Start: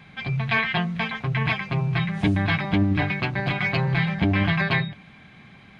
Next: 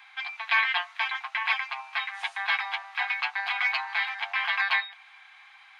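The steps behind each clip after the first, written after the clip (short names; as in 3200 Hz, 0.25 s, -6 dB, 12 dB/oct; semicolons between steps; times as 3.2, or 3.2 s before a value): steep high-pass 770 Hz 72 dB/oct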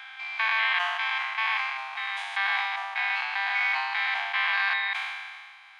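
stepped spectrum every 0.2 s; sustainer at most 33 dB/s; gain +3.5 dB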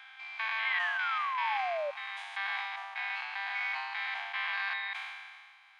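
painted sound fall, 0.65–1.91, 560–2200 Hz -25 dBFS; gain -8.5 dB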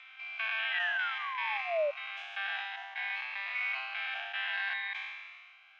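speaker cabinet 420–5800 Hz, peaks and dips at 630 Hz +8 dB, 940 Hz -6 dB, 1500 Hz +3 dB, 2700 Hz +7 dB, 4500 Hz -7 dB; cascading phaser rising 0.56 Hz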